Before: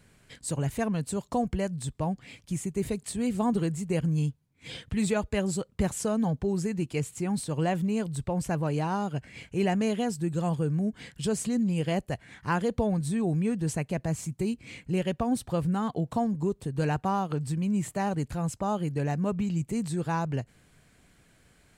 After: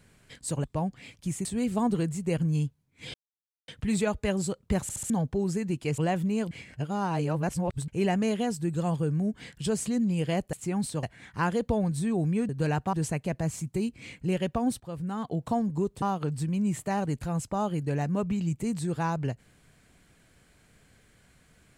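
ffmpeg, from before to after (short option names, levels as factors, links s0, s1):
-filter_complex "[0:a]asplit=17[s0][s1][s2][s3][s4][s5][s6][s7][s8][s9][s10][s11][s12][s13][s14][s15][s16];[s0]atrim=end=0.642[s17];[s1]atrim=start=1.888:end=2.702[s18];[s2]atrim=start=3.078:end=4.77,asetpts=PTS-STARTPTS,afade=t=out:st=1.688:d=0.004:c=hsin,apad=pad_dur=0.54[s19];[s3]atrim=start=4.77:end=5.982,asetpts=PTS-STARTPTS,afade=t=in:d=0.004:c=hsin[s20];[s4]atrim=start=5.908:end=5.982[s21];[s5]atrim=start=5.908:end=5.982[s22];[s6]atrim=start=5.908:end=5.982[s23];[s7]atrim=start=6.188:end=7.072[s24];[s8]atrim=start=7.568:end=8.102[s25];[s9]atrim=start=8.098:end=9.472,asetpts=PTS-STARTPTS,areverse[s26];[s10]atrim=start=9.468:end=12.122[s27];[s11]atrim=start=7.068:end=7.572[s28];[s12]atrim=start=12.118:end=13.582[s29];[s13]atrim=start=16.668:end=17.112[s30];[s14]atrim=start=13.578:end=15.45,asetpts=PTS-STARTPTS,afade=t=out:st=1.868:d=0.004:c=hsin:silence=0.199526[s31];[s15]atrim=start=15.45:end=16.672,asetpts=PTS-STARTPTS,afade=t=in:d=0.68:silence=0.199526[s32];[s16]atrim=start=17.108[s33];[s17][s18]acrossfade=d=0.004:c1=hsin:c2=hsin[s34];[s19][s20]concat=n=2:v=0:a=1[s35];[s34][s35]acrossfade=d=0.004:c1=hsin:c2=hsin[s36];[s36][s21]acrossfade=d=0.004:c1=hsin:c2=hsin[s37];[s37][s22]acrossfade=d=0.004:c1=hsin:c2=hsin[s38];[s38][s23]acrossfade=d=0.004:c1=hsin:c2=hsin[s39];[s39][s24]acrossfade=d=0.004:c1=hsin:c2=hsin[s40];[s40][s25]acrossfade=d=0.004:c1=hsin:c2=hsin[s41];[s41][s26]acrossfade=d=0.004:c1=hsin:c2=hsin[s42];[s42][s27]acrossfade=d=0.004:c1=hsin:c2=hsin[s43];[s43][s28]acrossfade=d=0.004:c1=hsin:c2=hsin[s44];[s44][s29]acrossfade=d=0.004:c1=hsin:c2=hsin[s45];[s45][s30]acrossfade=d=0.004:c1=hsin:c2=hsin[s46];[s31][s32]concat=n=2:v=0:a=1[s47];[s46][s47]acrossfade=d=0.004:c1=hsin:c2=hsin[s48];[s48][s33]acrossfade=d=0.004:c1=hsin:c2=hsin"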